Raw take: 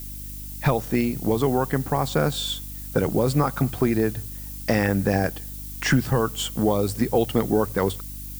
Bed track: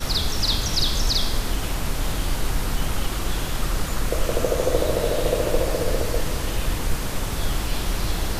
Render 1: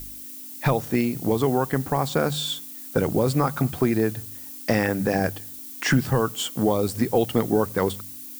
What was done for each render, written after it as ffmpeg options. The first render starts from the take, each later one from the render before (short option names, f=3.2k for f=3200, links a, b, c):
-af "bandreject=f=50:t=h:w=4,bandreject=f=100:t=h:w=4,bandreject=f=150:t=h:w=4,bandreject=f=200:t=h:w=4"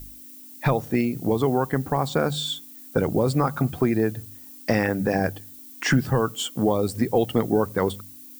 -af "afftdn=nr=7:nf=-39"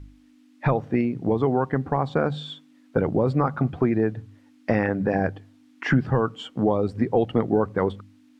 -af "lowpass=2.2k"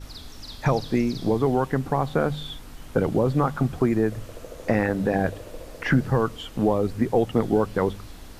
-filter_complex "[1:a]volume=-18dB[a];[0:a][a]amix=inputs=2:normalize=0"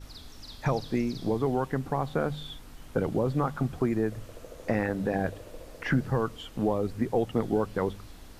-af "volume=-5.5dB"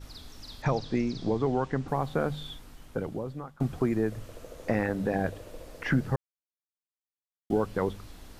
-filter_complex "[0:a]asettb=1/sr,asplit=3[a][b][c];[a]atrim=end=0.624[d];[b]atrim=start=0.62:end=1.88,asetpts=PTS-STARTPTS,afade=t=in:d=0.004:c=qsin,afade=t=out:st=1.256:d=0.004:c=qsin,lowpass=f=7.2k:w=0.5412,lowpass=f=7.2k:w=1.3066[e];[c]atrim=start=1.876[f];[d][e]acrossfade=d=0.004:c1=hsin:c2=qsin[g];[g][f]acrossfade=d=0.004:c1=qsin:c2=hsin,asplit=4[h][i][j][k];[h]atrim=end=3.6,asetpts=PTS-STARTPTS,afade=t=out:st=2.47:d=1.13:silence=0.0891251[l];[i]atrim=start=3.6:end=6.16,asetpts=PTS-STARTPTS,afade=t=in:d=0.004:c=hsin:silence=0.0891251,afade=t=out:st=2.556:d=0.004:c=hsin[m];[j]atrim=start=6.16:end=7.5,asetpts=PTS-STARTPTS,volume=0[n];[k]atrim=start=7.5,asetpts=PTS-STARTPTS,afade=t=in:d=0.004:c=hsin[o];[l][m][n][o]concat=n=4:v=0:a=1"